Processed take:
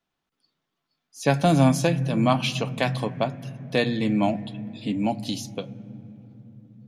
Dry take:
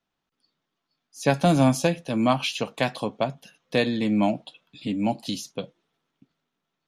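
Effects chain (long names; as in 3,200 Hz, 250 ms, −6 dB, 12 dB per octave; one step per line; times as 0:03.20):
on a send: octave-band graphic EQ 125/1,000/2,000/4,000 Hz +11/−3/+11/−10 dB + convolution reverb RT60 3.6 s, pre-delay 3 ms, DRR 11.5 dB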